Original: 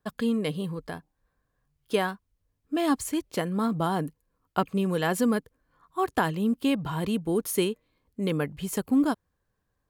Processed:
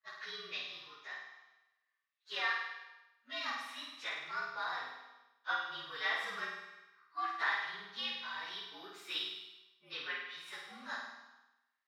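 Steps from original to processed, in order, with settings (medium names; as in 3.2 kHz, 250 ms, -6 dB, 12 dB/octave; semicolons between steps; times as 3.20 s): frequency axis rescaled in octaves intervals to 115%; wide varispeed 0.833×; Butterworth band-pass 2.5 kHz, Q 0.81; flutter echo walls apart 8.7 m, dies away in 0.9 s; gated-style reverb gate 470 ms falling, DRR 11 dB; trim +1 dB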